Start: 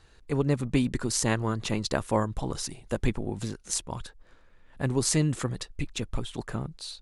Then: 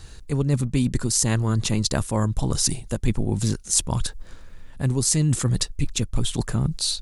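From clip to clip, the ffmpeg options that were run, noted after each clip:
-af "bass=f=250:g=9,treble=f=4000:g=11,areverse,acompressor=threshold=0.0447:ratio=6,areverse,volume=2.66"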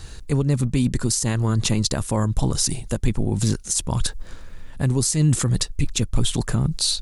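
-af "alimiter=limit=0.188:level=0:latency=1:release=143,volume=1.68"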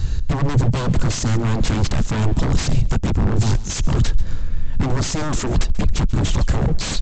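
-af "aresample=16000,aeval=exprs='0.0531*(abs(mod(val(0)/0.0531+3,4)-2)-1)':c=same,aresample=44100,bass=f=250:g=14,treble=f=4000:g=0,aecho=1:1:138:0.119,volume=1.58"

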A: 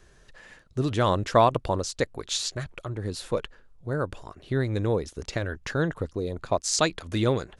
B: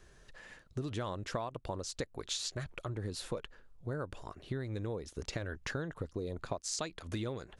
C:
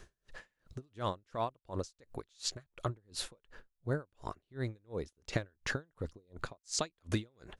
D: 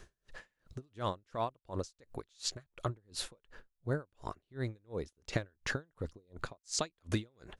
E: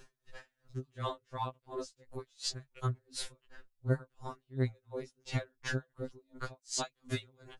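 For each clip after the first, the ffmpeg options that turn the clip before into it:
-af "acompressor=threshold=0.0316:ratio=16,volume=0.668"
-af "aeval=exprs='val(0)*pow(10,-39*(0.5-0.5*cos(2*PI*2.8*n/s))/20)':c=same,volume=2.11"
-af anull
-af "afftfilt=real='re*2.45*eq(mod(b,6),0)':imag='im*2.45*eq(mod(b,6),0)':win_size=2048:overlap=0.75,volume=1.26"

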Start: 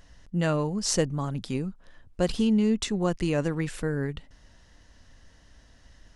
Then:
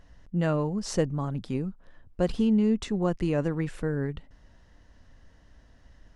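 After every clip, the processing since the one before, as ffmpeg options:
-af "highshelf=f=2600:g=-11"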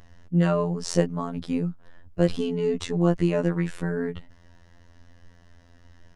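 -af "afftfilt=real='hypot(re,im)*cos(PI*b)':imag='0':win_size=2048:overlap=0.75,volume=2.24"

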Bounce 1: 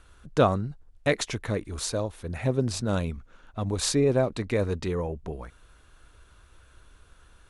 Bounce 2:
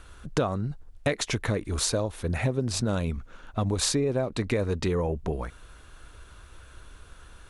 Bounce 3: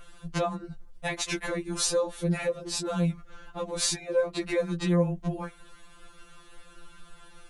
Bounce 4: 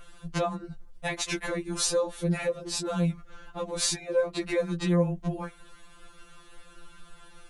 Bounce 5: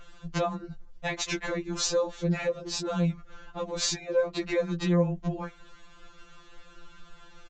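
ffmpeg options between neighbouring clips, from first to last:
-af "acompressor=threshold=0.0355:ratio=8,volume=2.11"
-af "afftfilt=real='re*2.83*eq(mod(b,8),0)':imag='im*2.83*eq(mod(b,8),0)':win_size=2048:overlap=0.75,volume=1.26"
-af anull
-af "aresample=16000,aresample=44100"

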